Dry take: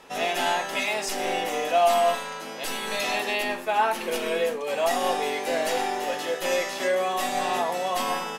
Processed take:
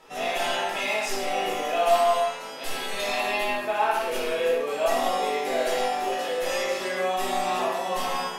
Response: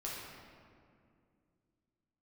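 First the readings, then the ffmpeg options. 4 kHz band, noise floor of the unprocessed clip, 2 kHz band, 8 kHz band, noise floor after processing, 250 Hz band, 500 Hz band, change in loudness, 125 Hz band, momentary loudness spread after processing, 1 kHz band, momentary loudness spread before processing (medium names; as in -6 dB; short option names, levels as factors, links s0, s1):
-0.5 dB, -36 dBFS, -1.0 dB, -2.0 dB, -36 dBFS, -1.5 dB, +0.5 dB, 0.0 dB, no reading, 5 LU, 0.0 dB, 5 LU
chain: -filter_complex "[1:a]atrim=start_sample=2205,afade=t=out:st=0.24:d=0.01,atrim=end_sample=11025[s0];[0:a][s0]afir=irnorm=-1:irlink=0"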